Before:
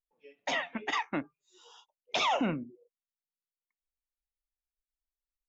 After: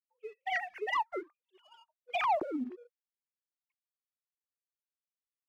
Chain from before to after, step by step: formants replaced by sine waves; low-pass that closes with the level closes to 670 Hz, closed at -26.5 dBFS; waveshaping leveller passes 1

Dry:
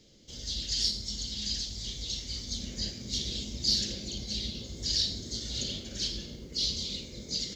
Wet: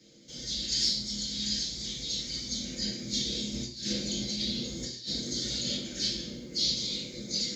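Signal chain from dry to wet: 3.52–5.75 s: compressor with a negative ratio -35 dBFS, ratio -0.5; reverberation RT60 0.50 s, pre-delay 3 ms, DRR -4.5 dB; trim -3.5 dB

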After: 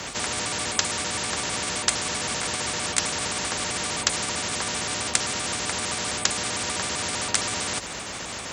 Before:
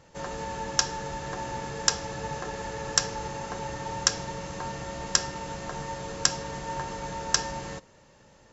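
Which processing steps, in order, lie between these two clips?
pitch shift switched off and on +4 st, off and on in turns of 65 ms; frequency shift +45 Hz; spectrum-flattening compressor 4:1

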